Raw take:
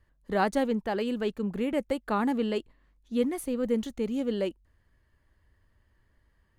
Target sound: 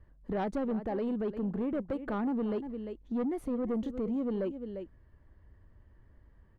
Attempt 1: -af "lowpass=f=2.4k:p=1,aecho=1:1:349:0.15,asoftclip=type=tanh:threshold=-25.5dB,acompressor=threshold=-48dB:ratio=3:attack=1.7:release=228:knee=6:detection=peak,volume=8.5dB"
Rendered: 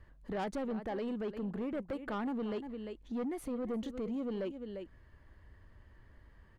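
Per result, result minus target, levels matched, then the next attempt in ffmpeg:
compressor: peak gain reduction +5 dB; 2000 Hz band +5.0 dB
-af "lowpass=f=2.4k:p=1,aecho=1:1:349:0.15,asoftclip=type=tanh:threshold=-25.5dB,acompressor=threshold=-40.5dB:ratio=3:attack=1.7:release=228:knee=6:detection=peak,volume=8.5dB"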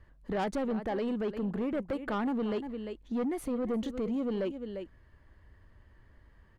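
2000 Hz band +4.5 dB
-af "lowpass=f=610:p=1,aecho=1:1:349:0.15,asoftclip=type=tanh:threshold=-25.5dB,acompressor=threshold=-40.5dB:ratio=3:attack=1.7:release=228:knee=6:detection=peak,volume=8.5dB"

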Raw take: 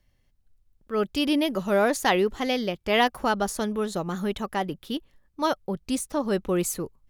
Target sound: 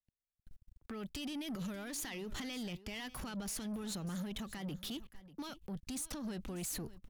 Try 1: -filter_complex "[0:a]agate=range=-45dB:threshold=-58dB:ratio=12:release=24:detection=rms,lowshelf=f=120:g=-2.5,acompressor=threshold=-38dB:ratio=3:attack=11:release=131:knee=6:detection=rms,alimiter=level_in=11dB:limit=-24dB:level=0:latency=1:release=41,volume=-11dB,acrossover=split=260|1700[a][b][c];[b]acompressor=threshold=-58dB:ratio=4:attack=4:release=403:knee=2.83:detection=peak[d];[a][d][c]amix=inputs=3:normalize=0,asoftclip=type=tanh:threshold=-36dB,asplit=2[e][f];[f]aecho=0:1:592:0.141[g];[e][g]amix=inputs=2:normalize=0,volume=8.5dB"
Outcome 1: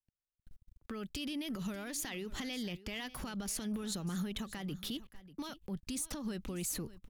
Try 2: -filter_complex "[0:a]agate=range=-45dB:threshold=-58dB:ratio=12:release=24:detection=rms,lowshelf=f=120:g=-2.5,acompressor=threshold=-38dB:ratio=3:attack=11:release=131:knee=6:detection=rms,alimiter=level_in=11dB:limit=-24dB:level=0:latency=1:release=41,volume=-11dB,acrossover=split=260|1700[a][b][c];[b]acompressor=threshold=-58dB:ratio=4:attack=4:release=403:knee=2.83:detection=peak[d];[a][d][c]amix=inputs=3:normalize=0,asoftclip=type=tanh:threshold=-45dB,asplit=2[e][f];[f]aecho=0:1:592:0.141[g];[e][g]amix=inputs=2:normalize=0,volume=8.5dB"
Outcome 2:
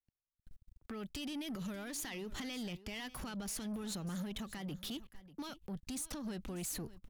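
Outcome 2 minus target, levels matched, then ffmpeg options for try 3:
compressor: peak gain reduction +4 dB
-filter_complex "[0:a]agate=range=-45dB:threshold=-58dB:ratio=12:release=24:detection=rms,lowshelf=f=120:g=-2.5,acompressor=threshold=-32dB:ratio=3:attack=11:release=131:knee=6:detection=rms,alimiter=level_in=11dB:limit=-24dB:level=0:latency=1:release=41,volume=-11dB,acrossover=split=260|1700[a][b][c];[b]acompressor=threshold=-58dB:ratio=4:attack=4:release=403:knee=2.83:detection=peak[d];[a][d][c]amix=inputs=3:normalize=0,asoftclip=type=tanh:threshold=-45dB,asplit=2[e][f];[f]aecho=0:1:592:0.141[g];[e][g]amix=inputs=2:normalize=0,volume=8.5dB"

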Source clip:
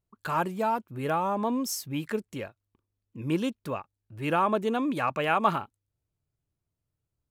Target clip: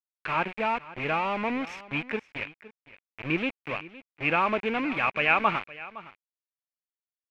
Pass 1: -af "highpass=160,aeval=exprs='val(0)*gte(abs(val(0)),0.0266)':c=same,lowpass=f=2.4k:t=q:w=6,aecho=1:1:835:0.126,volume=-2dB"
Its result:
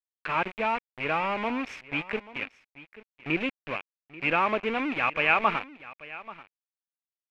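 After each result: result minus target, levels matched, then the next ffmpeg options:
echo 0.322 s late; 125 Hz band -2.5 dB
-af "highpass=160,aeval=exprs='val(0)*gte(abs(val(0)),0.0266)':c=same,lowpass=f=2.4k:t=q:w=6,aecho=1:1:513:0.126,volume=-2dB"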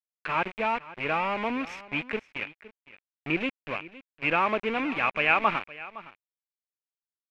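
125 Hz band -3.0 dB
-af "highpass=41,aeval=exprs='val(0)*gte(abs(val(0)),0.0266)':c=same,lowpass=f=2.4k:t=q:w=6,aecho=1:1:513:0.126,volume=-2dB"

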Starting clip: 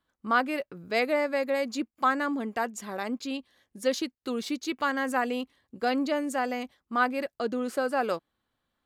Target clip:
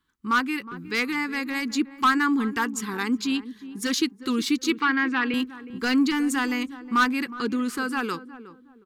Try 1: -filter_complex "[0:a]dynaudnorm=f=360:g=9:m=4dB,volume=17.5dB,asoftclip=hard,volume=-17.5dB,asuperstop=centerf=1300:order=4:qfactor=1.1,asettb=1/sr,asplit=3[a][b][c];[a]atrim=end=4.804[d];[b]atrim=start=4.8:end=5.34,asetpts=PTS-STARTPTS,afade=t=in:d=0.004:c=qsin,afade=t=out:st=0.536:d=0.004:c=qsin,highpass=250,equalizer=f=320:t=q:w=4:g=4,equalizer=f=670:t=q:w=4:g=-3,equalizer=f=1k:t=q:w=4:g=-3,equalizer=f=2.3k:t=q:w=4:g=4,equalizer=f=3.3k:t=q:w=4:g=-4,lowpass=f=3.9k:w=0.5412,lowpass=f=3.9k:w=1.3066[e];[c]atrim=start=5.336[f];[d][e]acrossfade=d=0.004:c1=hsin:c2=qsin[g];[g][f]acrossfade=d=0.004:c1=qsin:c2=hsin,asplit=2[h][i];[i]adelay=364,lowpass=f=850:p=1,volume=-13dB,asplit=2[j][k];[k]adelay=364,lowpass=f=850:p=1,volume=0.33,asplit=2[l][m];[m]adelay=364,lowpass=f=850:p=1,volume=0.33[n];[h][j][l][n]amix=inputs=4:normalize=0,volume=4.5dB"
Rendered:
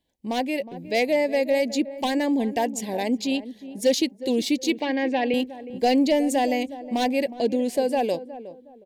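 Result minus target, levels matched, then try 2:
500 Hz band +12.0 dB
-filter_complex "[0:a]dynaudnorm=f=360:g=9:m=4dB,volume=17.5dB,asoftclip=hard,volume=-17.5dB,asuperstop=centerf=620:order=4:qfactor=1.1,asettb=1/sr,asplit=3[a][b][c];[a]atrim=end=4.804[d];[b]atrim=start=4.8:end=5.34,asetpts=PTS-STARTPTS,afade=t=in:d=0.004:c=qsin,afade=t=out:st=0.536:d=0.004:c=qsin,highpass=250,equalizer=f=320:t=q:w=4:g=4,equalizer=f=670:t=q:w=4:g=-3,equalizer=f=1k:t=q:w=4:g=-3,equalizer=f=2.3k:t=q:w=4:g=4,equalizer=f=3.3k:t=q:w=4:g=-4,lowpass=f=3.9k:w=0.5412,lowpass=f=3.9k:w=1.3066[e];[c]atrim=start=5.336[f];[d][e]acrossfade=d=0.004:c1=hsin:c2=qsin[g];[g][f]acrossfade=d=0.004:c1=qsin:c2=hsin,asplit=2[h][i];[i]adelay=364,lowpass=f=850:p=1,volume=-13dB,asplit=2[j][k];[k]adelay=364,lowpass=f=850:p=1,volume=0.33,asplit=2[l][m];[m]adelay=364,lowpass=f=850:p=1,volume=0.33[n];[h][j][l][n]amix=inputs=4:normalize=0,volume=4.5dB"

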